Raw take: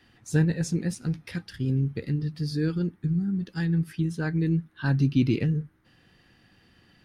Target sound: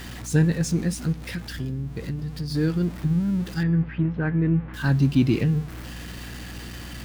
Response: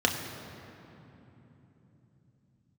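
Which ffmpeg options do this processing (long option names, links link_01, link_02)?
-filter_complex "[0:a]aeval=exprs='val(0)+0.5*0.0133*sgn(val(0))':channel_layout=same,asplit=3[link_01][link_02][link_03];[link_01]afade=type=out:start_time=1.12:duration=0.02[link_04];[link_02]acompressor=threshold=-30dB:ratio=6,afade=type=in:start_time=1.12:duration=0.02,afade=type=out:start_time=2.5:duration=0.02[link_05];[link_03]afade=type=in:start_time=2.5:duration=0.02[link_06];[link_04][link_05][link_06]amix=inputs=3:normalize=0,asettb=1/sr,asplit=3[link_07][link_08][link_09];[link_07]atrim=end=3.634[link_10];[link_08]atrim=start=3.63:end=4.74,asetpts=PTS-STARTPTS,afade=type=in:duration=0.004:curve=qsin,afade=type=out:start_time=1.106:duration=0.004:curve=qsin,lowpass=frequency=2400:width=0.5412,lowpass=frequency=2400:width=1.3066[link_11];[link_09]atrim=start=4.736[link_12];[link_10][link_11]acrossfade=duration=0.004:curve1=hsin:curve2=qsin[link_13];[link_13][link_12]acrossfade=duration=0.004:curve1=qsin:curve2=hsin,bandreject=frequency=428.3:width_type=h:width=4,bandreject=frequency=856.6:width_type=h:width=4,bandreject=frequency=1284.9:width_type=h:width=4,bandreject=frequency=1713.2:width_type=h:width=4,bandreject=frequency=2141.5:width_type=h:width=4,bandreject=frequency=2569.8:width_type=h:width=4,bandreject=frequency=2998.1:width_type=h:width=4,bandreject=frequency=3426.4:width_type=h:width=4,bandreject=frequency=3854.7:width_type=h:width=4,bandreject=frequency=4283:width_type=h:width=4,bandreject=frequency=4711.3:width_type=h:width=4,bandreject=frequency=5139.6:width_type=h:width=4,bandreject=frequency=5567.9:width_type=h:width=4,bandreject=frequency=5996.2:width_type=h:width=4,bandreject=frequency=6424.5:width_type=h:width=4,bandreject=frequency=6852.8:width_type=h:width=4,bandreject=frequency=7281.1:width_type=h:width=4,bandreject=frequency=7709.4:width_type=h:width=4,bandreject=frequency=8137.7:width_type=h:width=4,bandreject=frequency=8566:width_type=h:width=4,bandreject=frequency=8994.3:width_type=h:width=4,bandreject=frequency=9422.6:width_type=h:width=4,bandreject=frequency=9850.9:width_type=h:width=4,aeval=exprs='val(0)+0.01*(sin(2*PI*60*n/s)+sin(2*PI*2*60*n/s)/2+sin(2*PI*3*60*n/s)/3+sin(2*PI*4*60*n/s)/4+sin(2*PI*5*60*n/s)/5)':channel_layout=same,volume=2.5dB"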